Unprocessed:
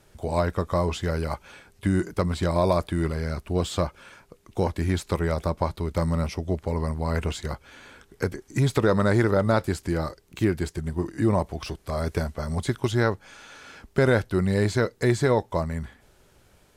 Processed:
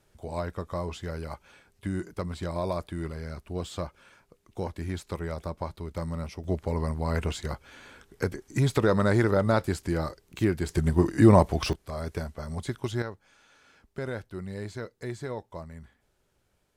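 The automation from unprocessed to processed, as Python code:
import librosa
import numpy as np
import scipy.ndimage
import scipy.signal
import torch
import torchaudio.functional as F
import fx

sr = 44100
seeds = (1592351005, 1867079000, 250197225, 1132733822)

y = fx.gain(x, sr, db=fx.steps((0.0, -8.5), (6.44, -2.0), (10.69, 5.5), (11.73, -6.5), (13.02, -14.0)))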